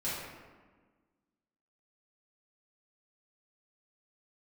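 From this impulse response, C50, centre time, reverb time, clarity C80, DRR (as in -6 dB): -1.0 dB, 93 ms, 1.4 s, 1.5 dB, -10.5 dB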